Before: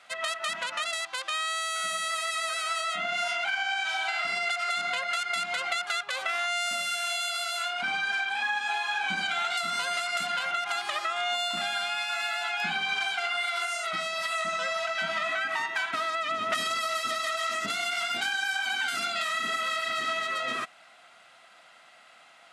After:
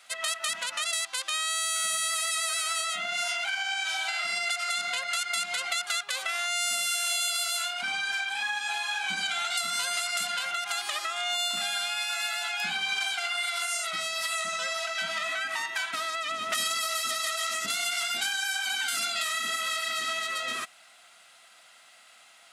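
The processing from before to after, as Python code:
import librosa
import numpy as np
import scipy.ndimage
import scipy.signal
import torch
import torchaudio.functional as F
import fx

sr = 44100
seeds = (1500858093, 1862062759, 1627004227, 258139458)

y = librosa.effects.preemphasis(x, coef=0.8, zi=[0.0])
y = y * 10.0 ** (8.5 / 20.0)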